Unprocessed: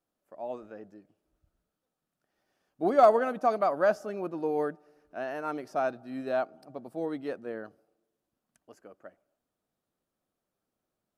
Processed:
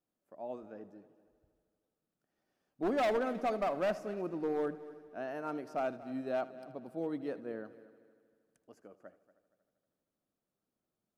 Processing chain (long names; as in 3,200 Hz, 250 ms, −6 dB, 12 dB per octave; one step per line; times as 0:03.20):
parametric band 200 Hz +5.5 dB 2.4 octaves
hard clipping −20.5 dBFS, distortion −8 dB
on a send: echo machine with several playback heads 78 ms, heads first and third, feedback 55%, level −18 dB
on the sum: level −7 dB